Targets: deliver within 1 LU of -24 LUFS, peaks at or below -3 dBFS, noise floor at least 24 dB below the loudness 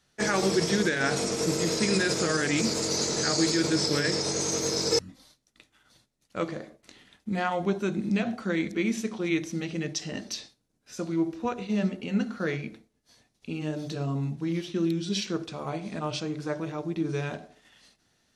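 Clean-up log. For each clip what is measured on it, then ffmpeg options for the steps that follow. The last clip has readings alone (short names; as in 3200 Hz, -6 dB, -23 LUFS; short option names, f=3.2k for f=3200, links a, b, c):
loudness -28.0 LUFS; peak -12.5 dBFS; loudness target -24.0 LUFS
-> -af "volume=4dB"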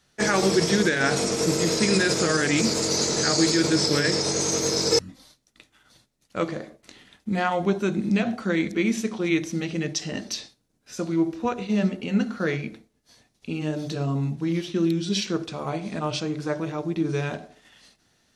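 loudness -24.0 LUFS; peak -8.5 dBFS; noise floor -69 dBFS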